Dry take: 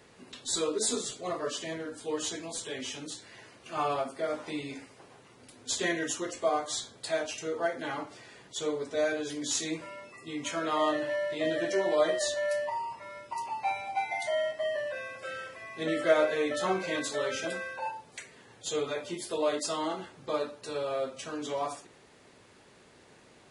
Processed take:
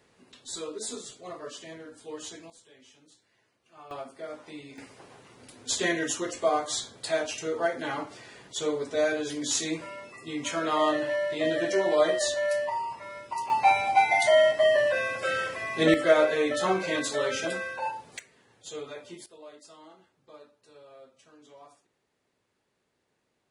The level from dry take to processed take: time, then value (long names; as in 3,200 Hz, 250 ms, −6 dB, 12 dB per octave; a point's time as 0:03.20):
−6.5 dB
from 0:02.50 −19 dB
from 0:03.91 −7 dB
from 0:04.78 +3 dB
from 0:13.50 +10.5 dB
from 0:15.94 +3.5 dB
from 0:18.19 −7 dB
from 0:19.26 −19 dB